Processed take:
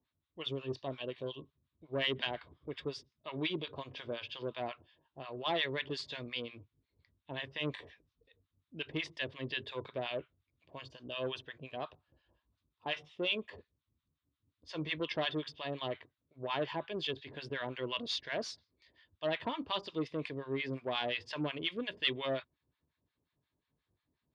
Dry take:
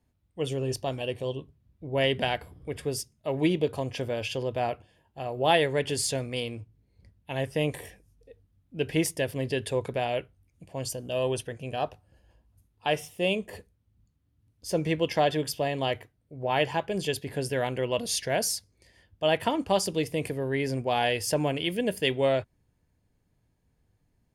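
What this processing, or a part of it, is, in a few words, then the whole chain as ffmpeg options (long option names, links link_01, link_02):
guitar amplifier with harmonic tremolo: -filter_complex "[0:a]acrossover=split=910[link_01][link_02];[link_01]aeval=exprs='val(0)*(1-1/2+1/2*cos(2*PI*5.6*n/s))':channel_layout=same[link_03];[link_02]aeval=exprs='val(0)*(1-1/2-1/2*cos(2*PI*5.6*n/s))':channel_layout=same[link_04];[link_03][link_04]amix=inputs=2:normalize=0,asoftclip=type=tanh:threshold=-22dB,highpass=100,equalizer=frequency=110:width_type=q:width=4:gain=-10,equalizer=frequency=190:width_type=q:width=4:gain=-10,equalizer=frequency=490:width_type=q:width=4:gain=-5,equalizer=frequency=770:width_type=q:width=4:gain=-7,equalizer=frequency=1100:width_type=q:width=4:gain=6,equalizer=frequency=3700:width_type=q:width=4:gain=9,lowpass=frequency=4300:width=0.5412,lowpass=frequency=4300:width=1.3066,volume=-1.5dB"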